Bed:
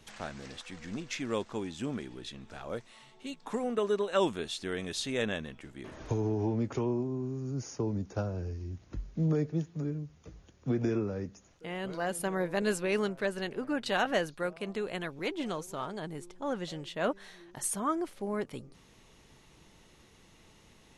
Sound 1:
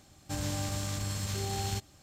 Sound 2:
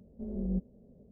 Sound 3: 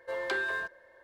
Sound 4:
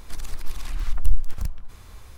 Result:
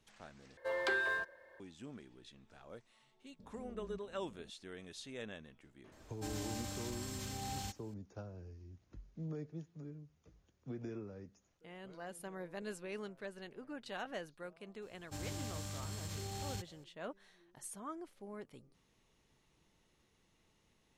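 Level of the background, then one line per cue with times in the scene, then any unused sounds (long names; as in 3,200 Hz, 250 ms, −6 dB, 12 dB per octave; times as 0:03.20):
bed −14.5 dB
0:00.57: overwrite with 3 −2.5 dB
0:03.39: mix in 2 −2.5 dB + downward compressor, threshold −46 dBFS
0:05.92: mix in 1 −9.5 dB + comb filter 3.9 ms, depth 68%
0:14.82: mix in 1 −9.5 dB
not used: 4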